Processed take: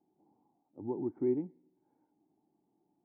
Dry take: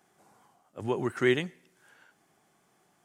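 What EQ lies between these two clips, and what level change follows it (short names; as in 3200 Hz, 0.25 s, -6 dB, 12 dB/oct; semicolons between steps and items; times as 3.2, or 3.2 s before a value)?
vocal tract filter u; +3.0 dB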